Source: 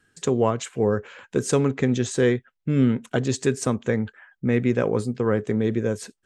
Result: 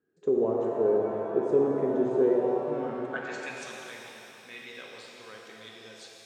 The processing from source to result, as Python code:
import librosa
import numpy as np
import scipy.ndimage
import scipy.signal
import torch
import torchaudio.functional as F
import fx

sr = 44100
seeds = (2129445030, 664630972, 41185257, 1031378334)

y = fx.filter_sweep_bandpass(x, sr, from_hz=400.0, to_hz=3600.0, start_s=2.29, end_s=3.76, q=2.7)
y = fx.rev_shimmer(y, sr, seeds[0], rt60_s=3.0, semitones=7, shimmer_db=-8, drr_db=-1.5)
y = F.gain(torch.from_numpy(y), -2.5).numpy()